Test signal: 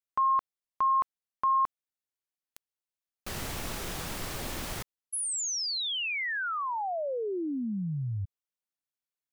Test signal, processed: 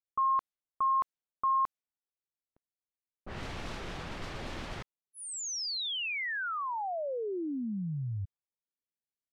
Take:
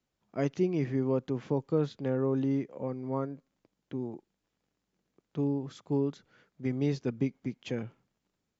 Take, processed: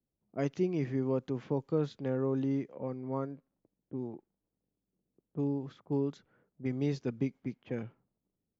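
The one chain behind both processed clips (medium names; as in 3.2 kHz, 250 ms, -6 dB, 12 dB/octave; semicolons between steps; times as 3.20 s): level-controlled noise filter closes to 470 Hz, open at -27.5 dBFS; trim -2.5 dB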